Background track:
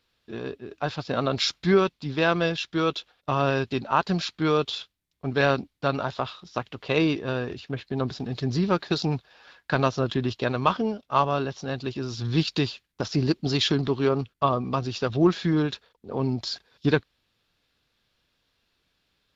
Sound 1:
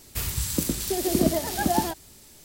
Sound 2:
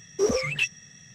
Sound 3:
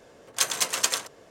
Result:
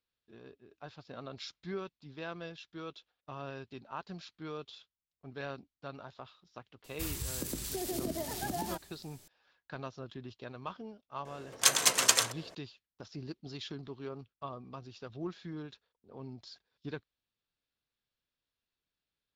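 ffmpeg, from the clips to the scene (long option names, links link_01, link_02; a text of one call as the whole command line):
ffmpeg -i bed.wav -i cue0.wav -i cue1.wav -i cue2.wav -filter_complex "[0:a]volume=-19.5dB[link_01];[1:a]acompressor=threshold=-23dB:ratio=6:attack=3.2:release=140:knee=1:detection=peak,atrim=end=2.44,asetpts=PTS-STARTPTS,volume=-8.5dB,afade=type=in:duration=0.004:curve=hsin,afade=type=out:start_time=2.436:duration=0.004:curve=hsin,adelay=6840[link_02];[3:a]atrim=end=1.3,asetpts=PTS-STARTPTS,afade=type=in:duration=0.004:curve=hsin,afade=type=out:start_time=1.296:duration=0.004:curve=hsin,adelay=11250[link_03];[link_01][link_02][link_03]amix=inputs=3:normalize=0" out.wav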